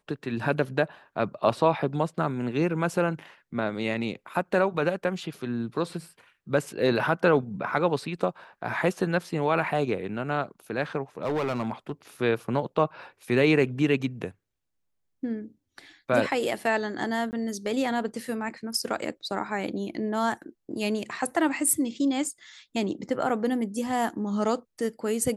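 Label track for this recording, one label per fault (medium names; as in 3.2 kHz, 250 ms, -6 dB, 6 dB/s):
11.230000	11.920000	clipped -23.5 dBFS
17.310000	17.330000	dropout 19 ms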